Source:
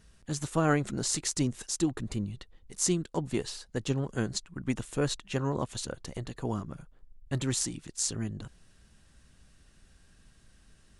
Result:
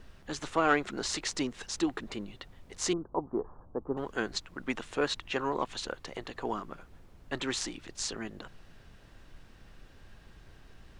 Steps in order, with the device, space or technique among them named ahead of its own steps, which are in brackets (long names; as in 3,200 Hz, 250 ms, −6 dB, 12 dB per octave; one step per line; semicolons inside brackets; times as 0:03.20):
aircraft cabin announcement (band-pass filter 440–3,700 Hz; soft clipping −17.5 dBFS, distortion −20 dB; brown noise bed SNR 16 dB)
0:02.93–0:03.97: Butterworth low-pass 1,200 Hz 48 dB per octave
dynamic equaliser 570 Hz, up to −5 dB, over −51 dBFS, Q 2.5
level +6 dB